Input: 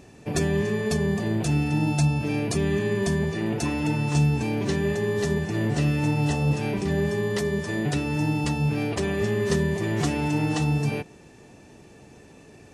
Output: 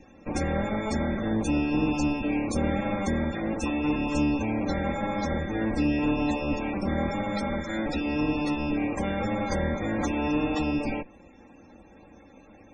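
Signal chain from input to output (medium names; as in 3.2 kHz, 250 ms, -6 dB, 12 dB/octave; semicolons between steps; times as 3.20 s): comb filter that takes the minimum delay 3.7 ms; band-stop 2.9 kHz, Q 14; loudest bins only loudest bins 64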